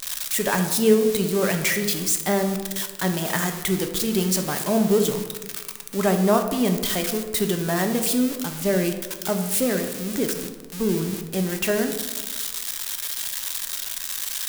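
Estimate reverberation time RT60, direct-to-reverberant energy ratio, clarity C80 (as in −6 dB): 1.3 s, 5.0 dB, 10.0 dB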